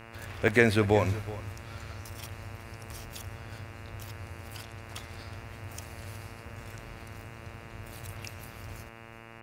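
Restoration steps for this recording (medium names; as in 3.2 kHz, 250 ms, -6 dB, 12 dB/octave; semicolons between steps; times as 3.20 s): de-hum 114 Hz, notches 25; interpolate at 0.48/4.03/7.72 s, 1.1 ms; inverse comb 369 ms -17.5 dB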